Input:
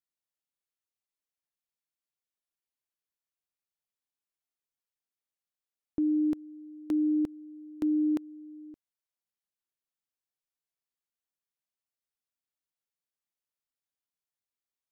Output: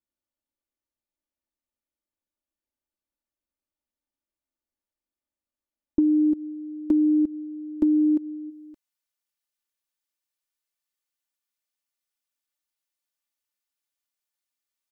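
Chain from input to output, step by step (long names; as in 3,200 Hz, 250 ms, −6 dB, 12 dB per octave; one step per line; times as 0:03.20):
tilt shelving filter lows +7.5 dB, about 860 Hz, from 0:08.49 lows −4 dB
comb filter 3.4 ms, depth 78%
dynamic equaliser 310 Hz, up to +6 dB, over −28 dBFS, Q 1.2
downward compressor 12 to 1, threshold −18 dBFS, peak gain reduction 10 dB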